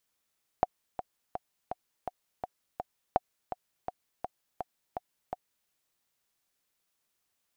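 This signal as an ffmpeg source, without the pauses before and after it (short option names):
-f lavfi -i "aevalsrc='pow(10,(-10-11*gte(mod(t,7*60/166),60/166))/20)*sin(2*PI*733*mod(t,60/166))*exp(-6.91*mod(t,60/166)/0.03)':d=5.06:s=44100"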